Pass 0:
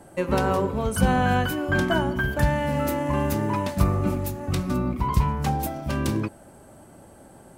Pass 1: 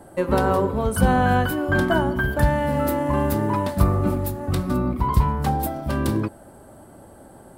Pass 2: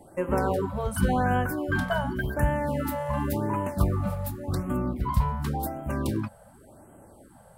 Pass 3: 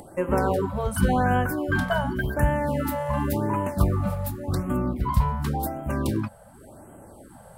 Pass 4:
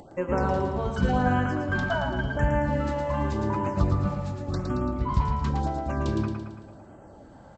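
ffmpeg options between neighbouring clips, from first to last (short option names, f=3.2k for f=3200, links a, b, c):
-af "equalizer=f=160:t=o:w=0.67:g=-3,equalizer=f=2.5k:t=o:w=0.67:g=-7,equalizer=f=6.3k:t=o:w=0.67:g=-8,volume=3.5dB"
-af "afftfilt=real='re*(1-between(b*sr/1024,290*pow(4700/290,0.5+0.5*sin(2*PI*0.9*pts/sr))/1.41,290*pow(4700/290,0.5+0.5*sin(2*PI*0.9*pts/sr))*1.41))':imag='im*(1-between(b*sr/1024,290*pow(4700/290,0.5+0.5*sin(2*PI*0.9*pts/sr))/1.41,290*pow(4700/290,0.5+0.5*sin(2*PI*0.9*pts/sr))*1.41))':win_size=1024:overlap=0.75,volume=-5.5dB"
-af "acompressor=mode=upward:threshold=-43dB:ratio=2.5,volume=2.5dB"
-filter_complex "[0:a]asplit=2[a][b];[b]aecho=0:1:112|224|336|448|560|672|784:0.562|0.298|0.158|0.0837|0.0444|0.0235|0.0125[c];[a][c]amix=inputs=2:normalize=0,aresample=16000,aresample=44100,volume=-3dB"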